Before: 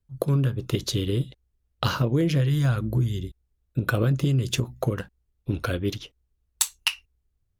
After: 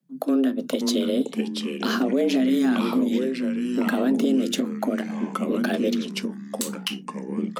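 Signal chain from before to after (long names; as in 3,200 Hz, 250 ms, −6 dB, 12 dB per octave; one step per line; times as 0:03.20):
delay with pitch and tempo change per echo 456 ms, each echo −4 semitones, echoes 3, each echo −6 dB
frequency shifter +130 Hz
brickwall limiter −15 dBFS, peak gain reduction 10.5 dB
level +2 dB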